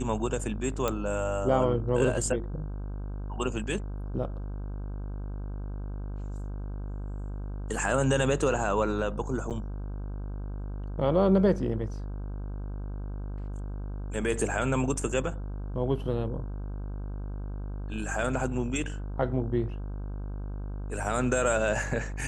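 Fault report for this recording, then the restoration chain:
buzz 50 Hz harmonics 32 -35 dBFS
0.88 pop -13 dBFS
9.5–9.51 gap 7.7 ms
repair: de-click; de-hum 50 Hz, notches 32; interpolate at 9.5, 7.7 ms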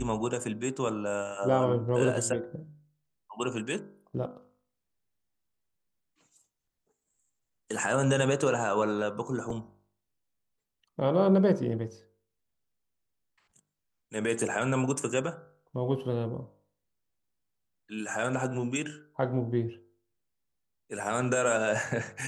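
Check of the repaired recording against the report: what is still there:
none

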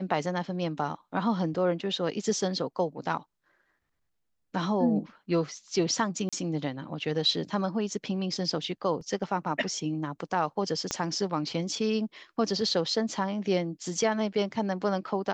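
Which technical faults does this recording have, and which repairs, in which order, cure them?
6.29–6.33 gap 36 ms
9.01 gap 2 ms
10.91 pop -14 dBFS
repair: de-click; interpolate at 6.29, 36 ms; interpolate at 9.01, 2 ms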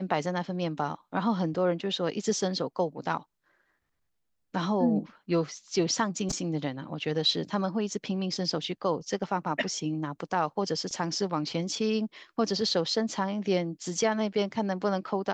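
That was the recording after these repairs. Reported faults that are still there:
10.91 pop

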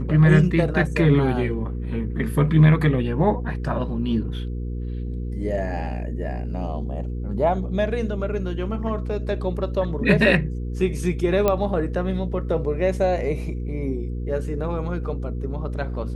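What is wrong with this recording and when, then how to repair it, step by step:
hum 60 Hz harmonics 8 -28 dBFS
11.48 pop -7 dBFS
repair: de-click; de-hum 60 Hz, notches 8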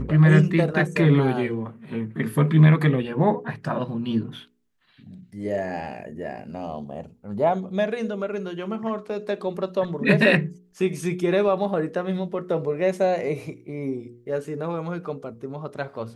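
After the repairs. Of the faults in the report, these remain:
none

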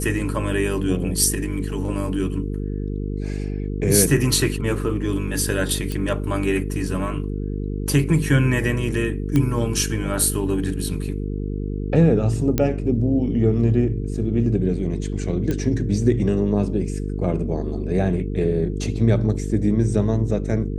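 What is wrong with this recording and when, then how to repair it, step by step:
buzz 50 Hz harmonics 9 -26 dBFS
5.92 pop
9.36 pop -9 dBFS
12.58 pop -6 dBFS
15.51 pop -12 dBFS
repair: de-click; de-hum 50 Hz, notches 9

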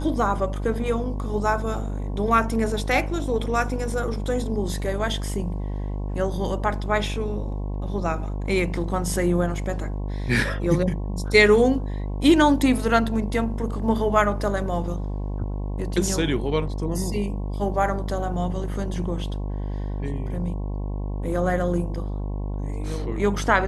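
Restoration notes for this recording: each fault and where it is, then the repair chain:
buzz 50 Hz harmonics 22 -28 dBFS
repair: de-hum 50 Hz, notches 22

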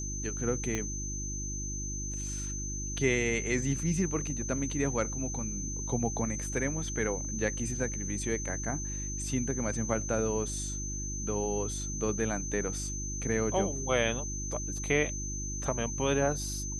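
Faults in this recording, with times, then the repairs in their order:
hum 50 Hz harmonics 7 -38 dBFS
tone 6200 Hz -37 dBFS
0.75 pop -18 dBFS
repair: de-click; de-hum 50 Hz, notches 7; notch 6200 Hz, Q 30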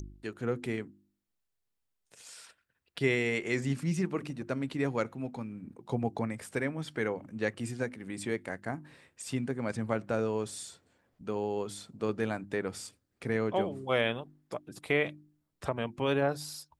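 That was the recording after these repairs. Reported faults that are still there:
0.75 pop

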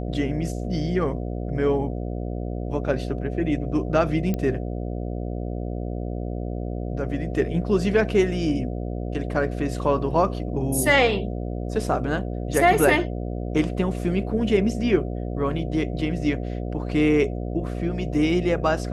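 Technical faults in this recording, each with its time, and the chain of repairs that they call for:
buzz 60 Hz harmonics 12 -29 dBFS
4.34 pop -14 dBFS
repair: de-click; de-hum 60 Hz, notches 12

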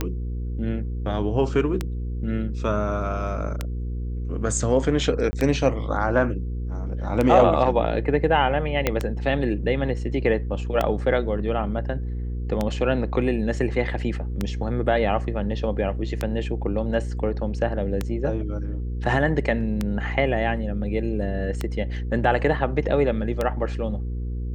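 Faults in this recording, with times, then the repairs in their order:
hum 60 Hz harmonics 8 -28 dBFS
tick 33 1/3 rpm -10 dBFS
5.31–5.33 gap 20 ms
8.87 pop -6 dBFS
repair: de-click; de-hum 60 Hz, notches 8; interpolate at 5.31, 20 ms

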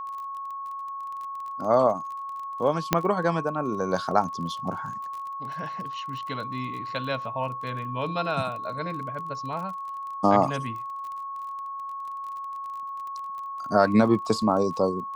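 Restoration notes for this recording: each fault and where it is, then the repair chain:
crackle 26/s -35 dBFS
tone 1100 Hz -32 dBFS
2.93 pop -4 dBFS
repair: de-click; notch 1100 Hz, Q 30

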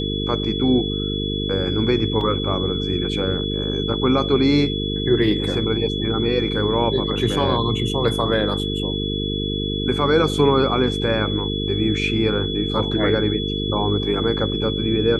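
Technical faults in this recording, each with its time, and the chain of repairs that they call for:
buzz 50 Hz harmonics 9 -25 dBFS
tone 3400 Hz -27 dBFS
2.21 gap 2.4 ms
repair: notch 3400 Hz, Q 30; de-hum 50 Hz, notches 9; interpolate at 2.21, 2.4 ms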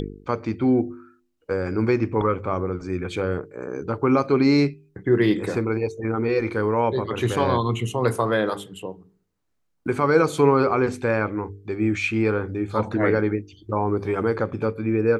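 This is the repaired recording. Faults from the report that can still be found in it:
none

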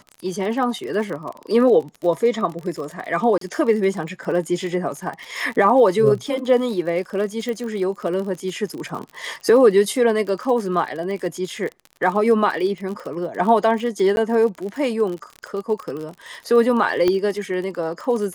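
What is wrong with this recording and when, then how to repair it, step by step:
crackle 46/s -28 dBFS
3.38–3.41 gap 33 ms
7.49 pop
14.16–14.17 gap 11 ms
17.08 pop -8 dBFS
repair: de-click; interpolate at 3.38, 33 ms; interpolate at 14.16, 11 ms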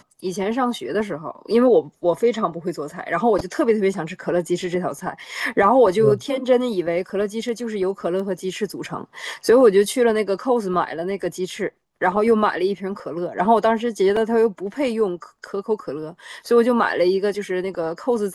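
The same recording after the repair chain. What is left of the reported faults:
7.49 pop

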